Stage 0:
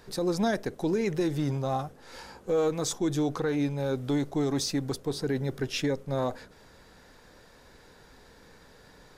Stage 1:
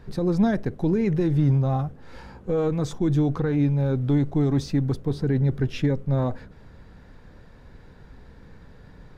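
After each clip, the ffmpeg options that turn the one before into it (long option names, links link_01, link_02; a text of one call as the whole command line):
ffmpeg -i in.wav -af "bass=frequency=250:gain=13,treble=frequency=4000:gain=-12" out.wav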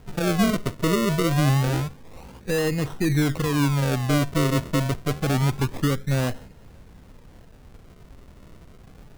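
ffmpeg -i in.wav -af "acrusher=samples=37:mix=1:aa=0.000001:lfo=1:lforange=37:lforate=0.27" out.wav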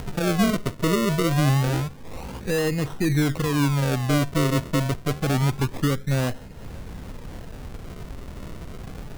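ffmpeg -i in.wav -af "acompressor=mode=upward:threshold=-24dB:ratio=2.5" out.wav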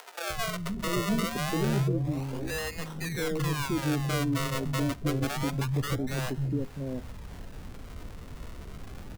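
ffmpeg -i in.wav -filter_complex "[0:a]acrossover=split=170|550[link_01][link_02][link_03];[link_01]adelay=300[link_04];[link_02]adelay=690[link_05];[link_04][link_05][link_03]amix=inputs=3:normalize=0,volume=-4.5dB" out.wav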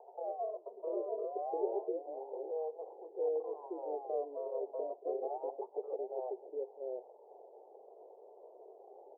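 ffmpeg -i in.wav -af "aeval=exprs='val(0)+0.00794*(sin(2*PI*50*n/s)+sin(2*PI*2*50*n/s)/2+sin(2*PI*3*50*n/s)/3+sin(2*PI*4*50*n/s)/4+sin(2*PI*5*50*n/s)/5)':channel_layout=same,asuperpass=centerf=570:order=12:qfactor=1.2" out.wav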